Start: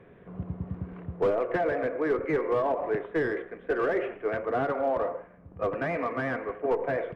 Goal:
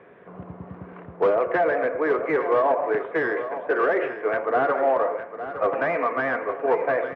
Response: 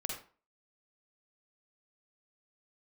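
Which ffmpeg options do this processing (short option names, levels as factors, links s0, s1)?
-filter_complex "[0:a]bandpass=f=1100:t=q:w=0.57:csg=0,asplit=2[s0][s1];[s1]aecho=0:1:861|1722|2583|3444:0.266|0.0958|0.0345|0.0124[s2];[s0][s2]amix=inputs=2:normalize=0,volume=2.51"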